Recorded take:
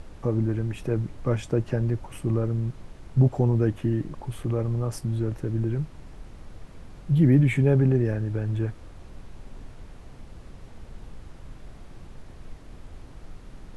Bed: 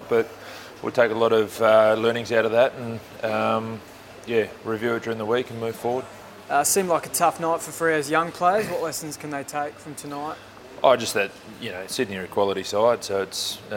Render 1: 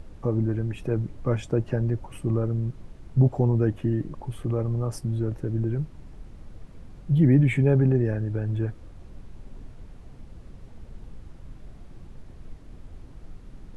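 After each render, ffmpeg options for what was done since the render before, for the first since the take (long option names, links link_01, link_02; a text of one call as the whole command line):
ffmpeg -i in.wav -af "afftdn=noise_reduction=6:noise_floor=-46" out.wav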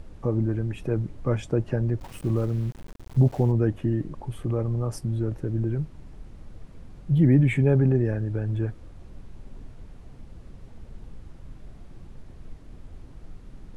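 ffmpeg -i in.wav -filter_complex "[0:a]asplit=3[link_01][link_02][link_03];[link_01]afade=type=out:start_time=1.99:duration=0.02[link_04];[link_02]aeval=exprs='val(0)*gte(abs(val(0)),0.00891)':channel_layout=same,afade=type=in:start_time=1.99:duration=0.02,afade=type=out:start_time=3.51:duration=0.02[link_05];[link_03]afade=type=in:start_time=3.51:duration=0.02[link_06];[link_04][link_05][link_06]amix=inputs=3:normalize=0" out.wav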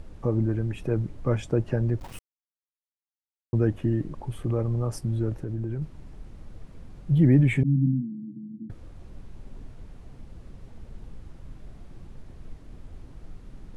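ffmpeg -i in.wav -filter_complex "[0:a]asettb=1/sr,asplit=3[link_01][link_02][link_03];[link_01]atrim=end=5.404[link_04];[link_02]atrim=start=5.4:end=5.82,asetpts=PTS-STARTPTS,afade=type=in:duration=0.004:curve=qsin,afade=type=out:start_time=0.416:duration=0.004:curve=qsin,acompressor=threshold=-28dB:ratio=3:attack=3.2:release=140:knee=1:detection=peak[link_05];[link_03]atrim=start=5.816[link_06];[link_04][link_05]acrossfade=duration=0.004:curve1=hsin:curve2=qsin[link_07];[link_07][link_06]acrossfade=duration=0.004:curve1=qsin:curve2=hsin,asettb=1/sr,asplit=3[link_08][link_09][link_10];[link_08]atrim=end=7.634[link_11];[link_09]atrim=start=7.63:end=8.7,asetpts=PTS-STARTPTS,afade=type=in:duration=0.004:curve=qsin,afade=type=out:start_time=1.066:duration=0.004:curve=qsin,asuperpass=centerf=200:order=20:qfactor=1.2[link_12];[link_10]atrim=start=8.696[link_13];[link_11][link_12]acrossfade=duration=0.004:curve1=hsin:curve2=qsin[link_14];[link_14][link_13]acrossfade=duration=0.004:curve1=qsin:curve2=hsin,asplit=3[link_15][link_16][link_17];[link_15]atrim=end=2.19,asetpts=PTS-STARTPTS,afade=type=out:start_time=2.186:duration=0.004:curve=hsin[link_18];[link_16]atrim=start=2.19:end=3.53,asetpts=PTS-STARTPTS,volume=0[link_19];[link_17]atrim=start=3.53,asetpts=PTS-STARTPTS,afade=type=in:duration=0.004:curve=hsin[link_20];[link_18][link_19][link_20]concat=n=3:v=0:a=1" out.wav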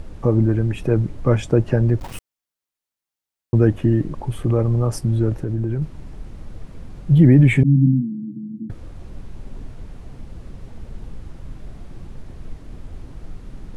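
ffmpeg -i in.wav -af "volume=8dB,alimiter=limit=-3dB:level=0:latency=1" out.wav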